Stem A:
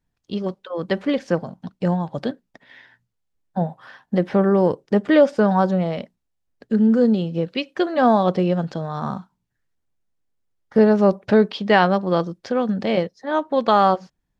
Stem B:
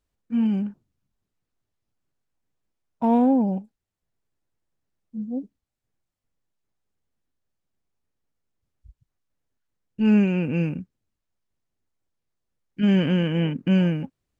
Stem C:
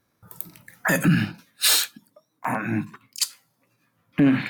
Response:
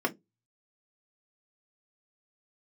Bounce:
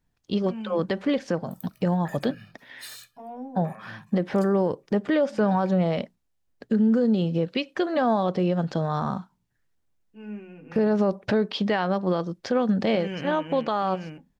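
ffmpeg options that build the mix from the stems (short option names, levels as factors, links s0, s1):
-filter_complex "[0:a]volume=1.26,asplit=2[s0][s1];[1:a]equalizer=f=250:t=o:w=1.5:g=-9,adelay=150,volume=0.501,asplit=2[s2][s3];[s3]volume=0.1[s4];[2:a]aecho=1:1:1.7:0.8,acompressor=threshold=0.0398:ratio=4,adelay=1200,volume=0.2[s5];[s1]apad=whole_len=641562[s6];[s2][s6]sidechaingate=range=0.0224:threshold=0.00708:ratio=16:detection=peak[s7];[3:a]atrim=start_sample=2205[s8];[s4][s8]afir=irnorm=-1:irlink=0[s9];[s0][s7][s5][s9]amix=inputs=4:normalize=0,alimiter=limit=0.188:level=0:latency=1:release=193"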